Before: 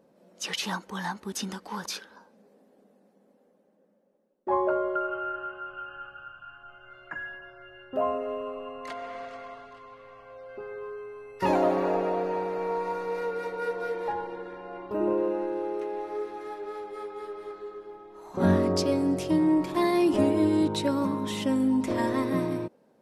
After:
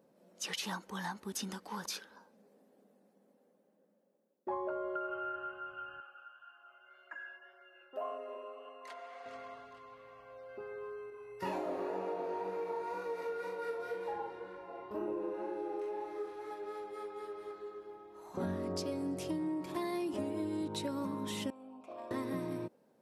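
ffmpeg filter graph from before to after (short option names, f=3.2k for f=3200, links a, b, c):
-filter_complex "[0:a]asettb=1/sr,asplit=3[a][b][c];[a]atrim=end=6.004[d];[b]atrim=start=6:end=9.26,asetpts=PTS-STARTPTS,afade=t=in:d=0.004:c=qsin,afade=t=out:st=3.256:d=0.004:c=qsin,highpass=480,flanger=delay=3.1:depth=6.8:regen=-52:speed=1.8:shape=sinusoidal[e];[c]atrim=start=9.256[f];[d][e]acrossfade=d=0.004:c1=hsin:c2=qsin[g];[g][f]acrossfade=d=0.004:c1=qsin:c2=hsin,asettb=1/sr,asplit=3[h][i][j];[h]atrim=end=11.104[k];[i]atrim=start=11.1:end=16.51,asetpts=PTS-STARTPTS,afade=t=in:d=0.004:c=qsin,afade=t=out:st=5.406:d=0.004:c=qsin,flanger=delay=19.5:depth=5.2:speed=2,asplit=2[l][m];[m]adelay=41,volume=-3dB[n];[l][n]amix=inputs=2:normalize=0,atrim=end_sample=238581[o];[j]atrim=start=16.506[p];[k][o]acrossfade=d=0.004:c1=hsin:c2=qsin[q];[q][p]acrossfade=d=0.004:c1=qsin:c2=hsin,asettb=1/sr,asplit=3[r][s][t];[r]atrim=end=21.504[u];[s]atrim=start=21.5:end=22.11,asetpts=PTS-STARTPTS,afade=t=in:d=0.004:c=qsin,afade=t=out:st=0.606:d=0.004:c=qsin,asplit=3[v][w][x];[v]bandpass=f=730:t=q:w=8,volume=0dB[y];[w]bandpass=f=1.09k:t=q:w=8,volume=-6dB[z];[x]bandpass=f=2.44k:t=q:w=8,volume=-9dB[aa];[y][z][aa]amix=inputs=3:normalize=0,highshelf=f=10k:g=9,asoftclip=type=hard:threshold=-32.5dB[ab];[t]atrim=start=22.106[ac];[u][ab]acrossfade=d=0.004:c1=hsin:c2=qsin[ad];[ad][ac]acrossfade=d=0.004:c1=qsin:c2=hsin,highpass=50,highshelf=f=9.1k:g=6.5,acompressor=threshold=-28dB:ratio=6,volume=-6dB"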